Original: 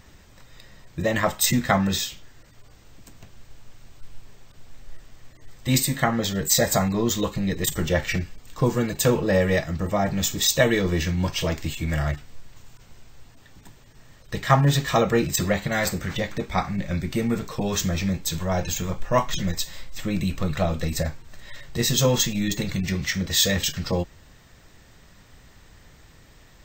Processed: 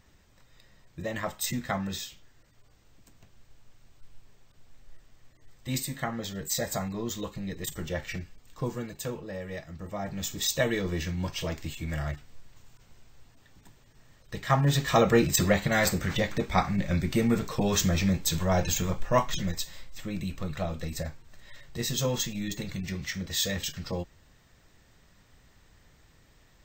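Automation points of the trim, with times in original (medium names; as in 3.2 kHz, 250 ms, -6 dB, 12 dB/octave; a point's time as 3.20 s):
8.66 s -10.5 dB
9.37 s -18 dB
10.44 s -7.5 dB
14.43 s -7.5 dB
15.08 s -0.5 dB
18.76 s -0.5 dB
20.06 s -8.5 dB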